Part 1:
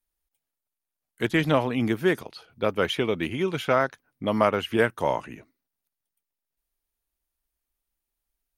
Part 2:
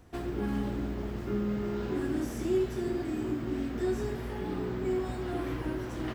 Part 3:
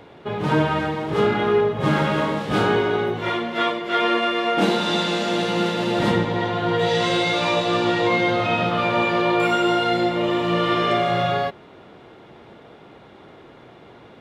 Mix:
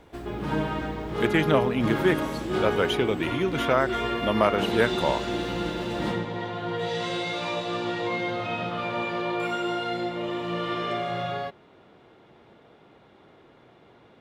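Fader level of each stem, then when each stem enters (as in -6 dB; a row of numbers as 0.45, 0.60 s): -0.5, -1.5, -9.0 dB; 0.00, 0.00, 0.00 s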